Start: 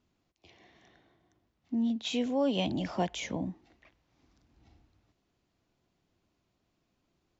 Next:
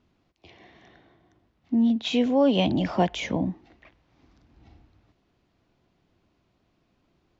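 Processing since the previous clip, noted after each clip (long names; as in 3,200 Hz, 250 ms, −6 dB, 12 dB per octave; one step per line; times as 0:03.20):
high-frequency loss of the air 120 metres
level +8.5 dB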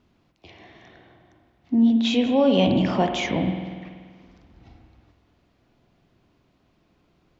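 in parallel at −0.5 dB: brickwall limiter −21 dBFS, peak gain reduction 11 dB
on the sum: spring reverb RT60 1.8 s, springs 48 ms, chirp 65 ms, DRR 5.5 dB
level −2 dB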